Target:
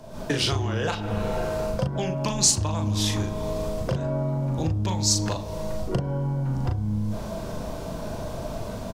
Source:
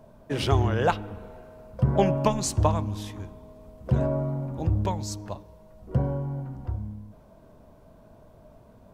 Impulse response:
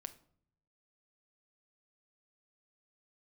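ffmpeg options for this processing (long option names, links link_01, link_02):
-filter_complex "[0:a]asplit=2[link_01][link_02];[1:a]atrim=start_sample=2205[link_03];[link_02][link_03]afir=irnorm=-1:irlink=0,volume=3.5dB[link_04];[link_01][link_04]amix=inputs=2:normalize=0,dynaudnorm=framelen=100:gausssize=3:maxgain=13dB,acrossover=split=420|1000[link_05][link_06][link_07];[link_06]alimiter=limit=-18.5dB:level=0:latency=1[link_08];[link_05][link_08][link_07]amix=inputs=3:normalize=0,acompressor=threshold=-24dB:ratio=12,equalizer=frequency=5500:width_type=o:width=2:gain=10.5,asplit=2[link_09][link_10];[link_10]adelay=38,volume=-5dB[link_11];[link_09][link_11]amix=inputs=2:normalize=0"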